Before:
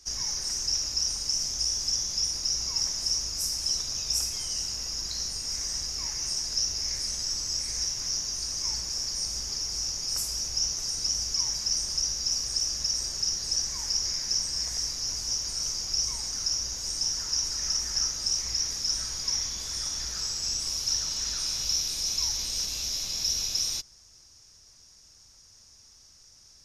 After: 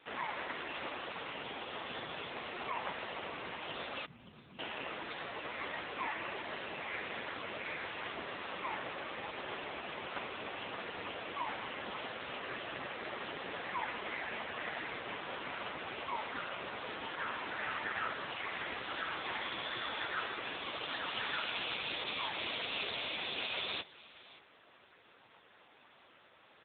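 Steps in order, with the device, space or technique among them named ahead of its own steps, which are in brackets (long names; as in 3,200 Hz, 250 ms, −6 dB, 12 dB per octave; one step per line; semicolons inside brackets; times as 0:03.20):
0:04.05–0:04.59: Chebyshev band-stop filter 220–7,500 Hz, order 4
satellite phone (band-pass filter 350–3,200 Hz; single-tap delay 579 ms −19 dB; level +15 dB; AMR narrowband 5.9 kbit/s 8,000 Hz)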